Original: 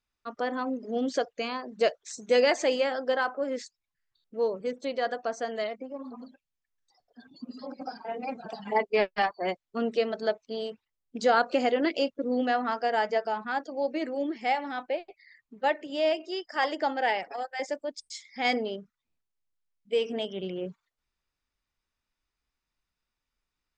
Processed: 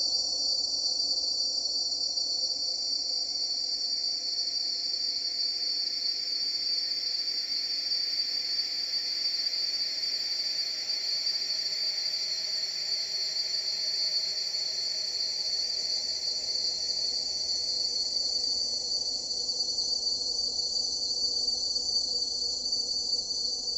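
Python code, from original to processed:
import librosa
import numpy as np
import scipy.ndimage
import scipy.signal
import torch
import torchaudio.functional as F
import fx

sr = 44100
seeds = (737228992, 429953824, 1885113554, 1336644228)

y = fx.band_swap(x, sr, width_hz=4000)
y = fx.paulstretch(y, sr, seeds[0], factor=40.0, window_s=0.5, from_s=5.1)
y = F.gain(torch.from_numpy(y), 1.5).numpy()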